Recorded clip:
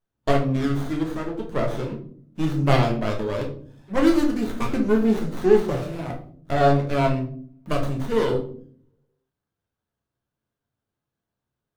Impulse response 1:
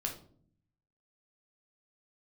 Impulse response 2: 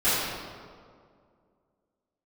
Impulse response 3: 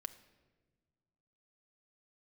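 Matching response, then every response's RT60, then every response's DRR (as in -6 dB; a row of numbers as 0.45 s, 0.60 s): 1; 0.55 s, 2.1 s, 1.4 s; 0.0 dB, -17.0 dB, 7.0 dB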